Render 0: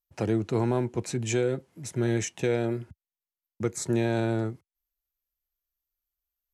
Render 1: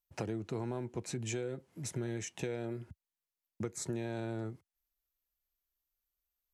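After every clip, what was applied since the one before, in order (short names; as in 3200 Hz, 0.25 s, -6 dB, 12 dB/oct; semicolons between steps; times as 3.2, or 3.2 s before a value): compressor 4:1, threshold -35 dBFS, peak gain reduction 12 dB; gain -1 dB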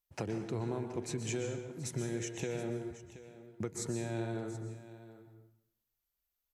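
echo 0.726 s -15.5 dB; plate-style reverb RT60 0.8 s, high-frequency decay 0.85×, pre-delay 0.11 s, DRR 6 dB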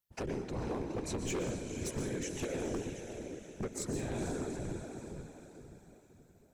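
diffused feedback echo 0.476 s, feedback 45%, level -7 dB; whisperiser; wavefolder -29 dBFS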